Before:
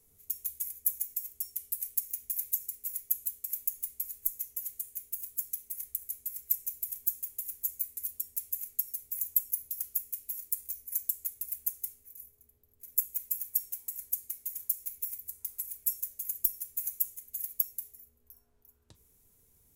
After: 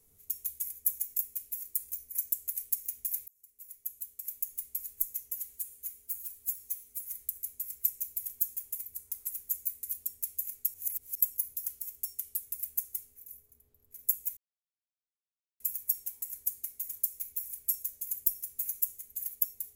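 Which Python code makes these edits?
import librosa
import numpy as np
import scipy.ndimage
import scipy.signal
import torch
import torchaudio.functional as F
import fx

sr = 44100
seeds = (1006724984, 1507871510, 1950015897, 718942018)

y = fx.edit(x, sr, fx.swap(start_s=1.19, length_s=0.59, other_s=9.96, other_length_s=1.34),
    fx.fade_in_span(start_s=2.53, length_s=1.55),
    fx.stretch_span(start_s=4.69, length_s=1.18, factor=1.5),
    fx.reverse_span(start_s=8.88, length_s=0.47),
    fx.insert_silence(at_s=13.26, length_s=1.23),
    fx.move(start_s=15.12, length_s=0.52, to_s=7.45), tone=tone)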